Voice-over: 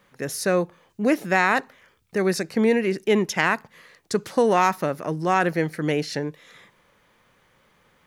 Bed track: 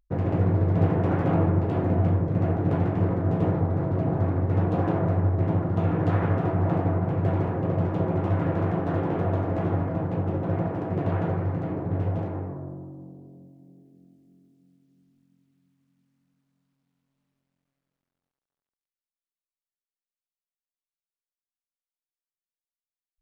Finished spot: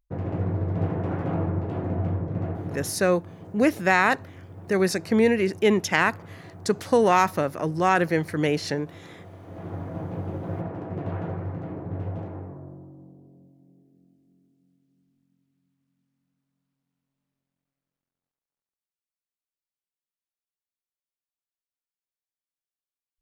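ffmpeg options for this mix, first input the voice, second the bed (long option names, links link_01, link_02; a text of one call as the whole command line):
ffmpeg -i stem1.wav -i stem2.wav -filter_complex "[0:a]adelay=2550,volume=0dB[link_01];[1:a]volume=10.5dB,afade=type=out:start_time=2.38:duration=0.64:silence=0.16788,afade=type=in:start_time=9.4:duration=0.62:silence=0.177828[link_02];[link_01][link_02]amix=inputs=2:normalize=0" out.wav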